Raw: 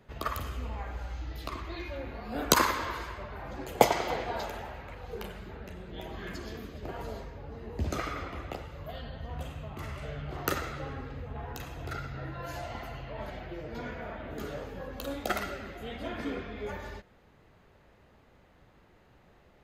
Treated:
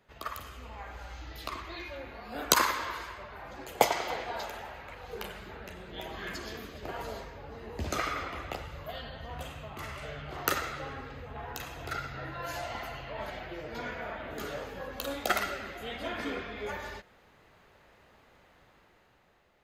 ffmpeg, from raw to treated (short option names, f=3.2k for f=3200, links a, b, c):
-filter_complex "[0:a]asettb=1/sr,asplit=3[a][b][c];[a]atrim=end=8.364[d];[b]atrim=start=8.36:end=8.79,asetpts=PTS-STARTPTS,afade=t=in:d=0.004:c=qsin,afade=t=out:st=0.426:d=0.004:c=qsin,asubboost=boost=9:cutoff=240[e];[c]atrim=start=8.786[f];[d][e]acrossfade=d=0.004:c1=hsin:c2=qsin[g];[g][f]acrossfade=d=0.004:c1=qsin:c2=hsin,lowshelf=f=460:g=-10,dynaudnorm=f=180:g=11:m=8dB,volume=-3dB"